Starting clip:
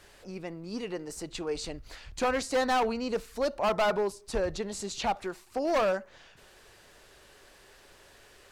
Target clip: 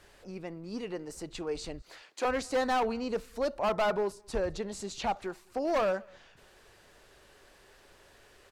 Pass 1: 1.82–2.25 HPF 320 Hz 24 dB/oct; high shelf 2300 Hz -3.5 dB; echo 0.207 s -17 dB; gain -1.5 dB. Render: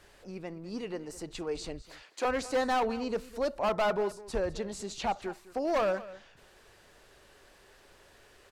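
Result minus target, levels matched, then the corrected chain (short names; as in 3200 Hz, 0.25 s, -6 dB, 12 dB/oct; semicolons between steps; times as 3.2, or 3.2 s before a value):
echo-to-direct +11 dB
1.82–2.25 HPF 320 Hz 24 dB/oct; high shelf 2300 Hz -3.5 dB; echo 0.207 s -28 dB; gain -1.5 dB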